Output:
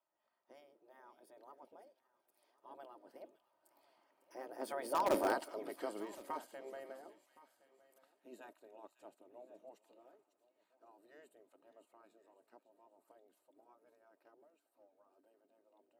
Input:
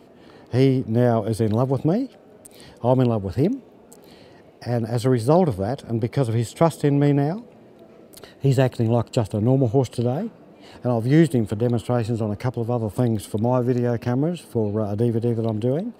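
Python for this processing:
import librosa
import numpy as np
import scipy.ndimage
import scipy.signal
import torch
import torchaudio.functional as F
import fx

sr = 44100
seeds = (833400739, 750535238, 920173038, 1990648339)

p1 = fx.doppler_pass(x, sr, speed_mps=23, closest_m=1.9, pass_at_s=5.25)
p2 = fx.spec_gate(p1, sr, threshold_db=-10, keep='weak')
p3 = scipy.signal.sosfilt(scipy.signal.butter(2, 390.0, 'highpass', fs=sr, output='sos'), p2)
p4 = fx.peak_eq(p3, sr, hz=4600.0, db=-12.5, octaves=2.9)
p5 = p4 + 0.4 * np.pad(p4, (int(3.2 * sr / 1000.0), 0))[:len(p4)]
p6 = fx.echo_wet_highpass(p5, sr, ms=551, feedback_pct=41, hz=2600.0, wet_db=-11)
p7 = (np.mod(10.0 ** (33.5 / 20.0) * p6 + 1.0, 2.0) - 1.0) / 10.0 ** (33.5 / 20.0)
p8 = p6 + F.gain(torch.from_numpy(p7), -10.0).numpy()
p9 = p8 + 10.0 ** (-21.5 / 20.0) * np.pad(p8, (int(1067 * sr / 1000.0), 0))[:len(p8)]
y = F.gain(torch.from_numpy(p9), 7.0).numpy()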